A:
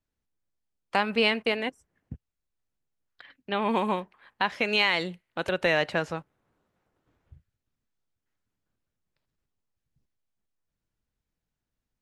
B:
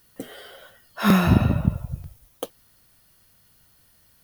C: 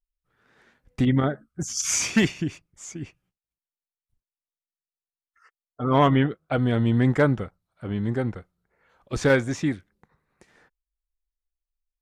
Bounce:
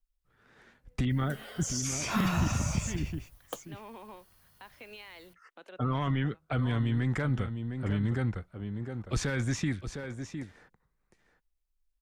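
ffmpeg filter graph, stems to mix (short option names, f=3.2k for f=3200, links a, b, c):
-filter_complex "[0:a]highpass=f=230:w=0.5412,highpass=f=230:w=1.3066,alimiter=limit=-20dB:level=0:latency=1:release=134,adelay=200,volume=-17dB[a];[1:a]equalizer=f=1k:w=1.1:g=6,acontrast=57,adelay=1100,volume=-12dB[b];[2:a]alimiter=limit=-19.5dB:level=0:latency=1:release=16,volume=0dB,asplit=3[c][d][e];[d]volume=-11.5dB[f];[e]apad=whole_len=538799[g];[a][g]sidechaincompress=threshold=-36dB:ratio=8:attack=16:release=531[h];[f]aecho=0:1:708:1[i];[h][b][c][i]amix=inputs=4:normalize=0,lowshelf=f=100:g=7.5,acrossover=split=230|980[j][k][l];[j]acompressor=threshold=-27dB:ratio=4[m];[k]acompressor=threshold=-39dB:ratio=4[n];[l]acompressor=threshold=-33dB:ratio=4[o];[m][n][o]amix=inputs=3:normalize=0"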